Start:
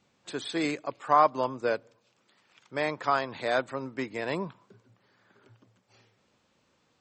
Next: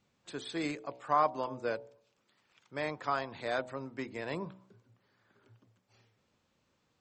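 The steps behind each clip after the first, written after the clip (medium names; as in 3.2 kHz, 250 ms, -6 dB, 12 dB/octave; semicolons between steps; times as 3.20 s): bass shelf 110 Hz +8.5 dB; de-hum 63.11 Hz, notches 15; trim -6.5 dB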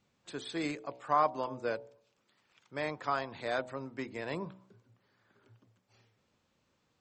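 no audible change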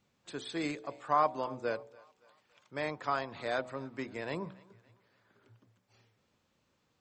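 thinning echo 283 ms, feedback 52%, high-pass 420 Hz, level -23 dB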